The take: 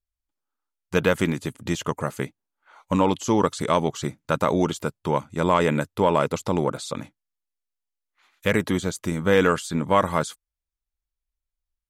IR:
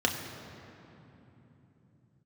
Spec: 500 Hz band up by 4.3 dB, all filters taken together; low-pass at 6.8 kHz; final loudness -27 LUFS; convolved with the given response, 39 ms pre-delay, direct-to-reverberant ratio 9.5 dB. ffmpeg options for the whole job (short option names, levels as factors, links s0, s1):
-filter_complex "[0:a]lowpass=6800,equalizer=f=500:t=o:g=5,asplit=2[s0][s1];[1:a]atrim=start_sample=2205,adelay=39[s2];[s1][s2]afir=irnorm=-1:irlink=0,volume=0.1[s3];[s0][s3]amix=inputs=2:normalize=0,volume=0.501"